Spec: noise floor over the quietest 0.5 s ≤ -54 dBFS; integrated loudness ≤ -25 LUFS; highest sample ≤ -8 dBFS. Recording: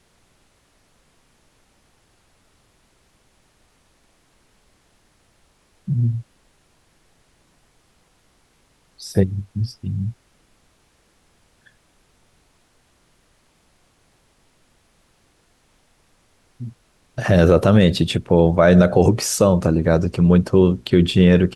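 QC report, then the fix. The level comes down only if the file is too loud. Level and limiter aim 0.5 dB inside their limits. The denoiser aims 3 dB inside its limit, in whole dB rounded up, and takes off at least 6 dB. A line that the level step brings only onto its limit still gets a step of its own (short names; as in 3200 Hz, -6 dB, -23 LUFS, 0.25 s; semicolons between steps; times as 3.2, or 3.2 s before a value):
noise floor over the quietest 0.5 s -60 dBFS: OK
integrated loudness -17.0 LUFS: fail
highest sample -2.0 dBFS: fail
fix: gain -8.5 dB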